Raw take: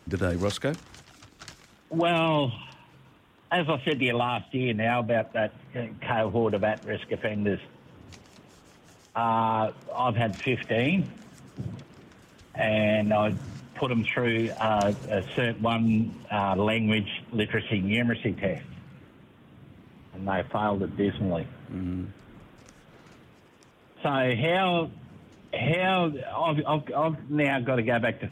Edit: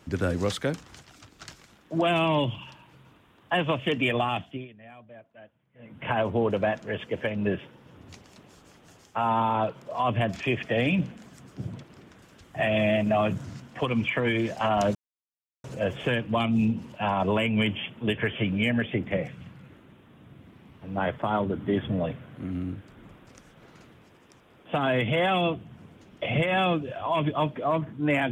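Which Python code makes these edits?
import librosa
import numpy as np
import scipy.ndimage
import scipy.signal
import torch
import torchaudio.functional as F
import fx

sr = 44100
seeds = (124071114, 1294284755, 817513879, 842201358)

y = fx.edit(x, sr, fx.fade_down_up(start_s=4.41, length_s=1.65, db=-23.0, fade_s=0.27),
    fx.insert_silence(at_s=14.95, length_s=0.69), tone=tone)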